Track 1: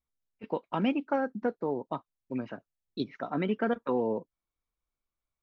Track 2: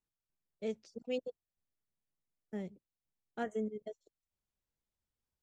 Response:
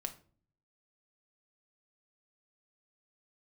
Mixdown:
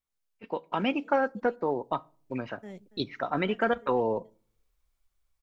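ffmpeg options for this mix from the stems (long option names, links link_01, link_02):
-filter_complex "[0:a]asubboost=boost=8.5:cutoff=76,volume=-0.5dB,asplit=3[link_01][link_02][link_03];[link_02]volume=-10.5dB[link_04];[1:a]alimiter=level_in=9dB:limit=-24dB:level=0:latency=1,volume=-9dB,adelay=100,volume=0dB,asplit=2[link_05][link_06];[link_06]volume=-22.5dB[link_07];[link_03]apad=whole_len=243736[link_08];[link_05][link_08]sidechaincompress=threshold=-41dB:ratio=8:attack=12:release=462[link_09];[2:a]atrim=start_sample=2205[link_10];[link_04][link_10]afir=irnorm=-1:irlink=0[link_11];[link_07]aecho=0:1:283:1[link_12];[link_01][link_09][link_11][link_12]amix=inputs=4:normalize=0,lowshelf=frequency=440:gain=-7,dynaudnorm=framelen=330:gausssize=5:maxgain=6dB"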